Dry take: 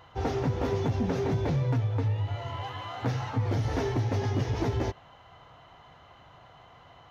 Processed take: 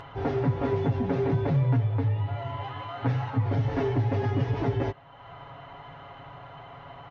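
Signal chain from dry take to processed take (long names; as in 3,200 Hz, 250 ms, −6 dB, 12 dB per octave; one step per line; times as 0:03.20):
low-pass filter 2,700 Hz 12 dB per octave
upward compression, threshold −37 dBFS
comb filter 7.2 ms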